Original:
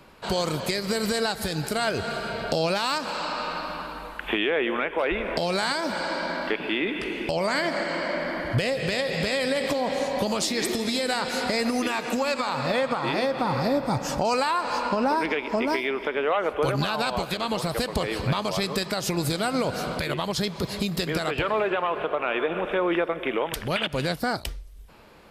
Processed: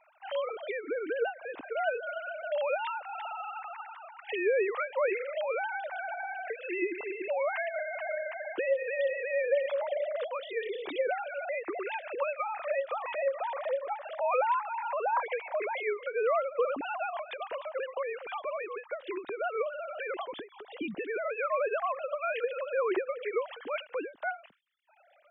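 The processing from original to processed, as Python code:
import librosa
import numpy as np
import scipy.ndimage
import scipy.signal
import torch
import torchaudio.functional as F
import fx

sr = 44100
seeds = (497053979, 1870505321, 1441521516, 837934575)

y = fx.sine_speech(x, sr)
y = fx.end_taper(y, sr, db_per_s=220.0)
y = y * 10.0 ** (-6.0 / 20.0)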